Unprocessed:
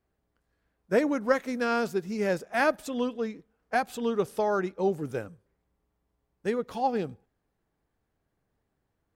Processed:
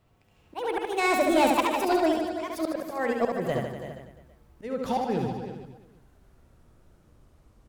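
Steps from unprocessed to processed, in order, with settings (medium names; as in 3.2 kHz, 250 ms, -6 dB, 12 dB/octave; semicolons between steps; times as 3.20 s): gliding tape speed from 171% -> 67%; bass shelf 180 Hz +8 dB; hum notches 50/100/150/200/250/300/350 Hz; slow attack 792 ms; in parallel at +1.5 dB: peak limiter -30 dBFS, peak gain reduction 11.5 dB; on the sum: delay 329 ms -12.5 dB; saturation -23 dBFS, distortion -16 dB; on a send: reverse bouncing-ball echo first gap 70 ms, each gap 1.15×, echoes 5; on the sum: level rider gain up to 5 dB; trim +2 dB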